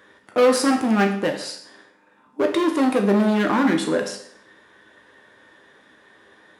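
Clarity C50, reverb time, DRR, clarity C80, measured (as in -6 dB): 8.0 dB, 0.60 s, 2.5 dB, 11.5 dB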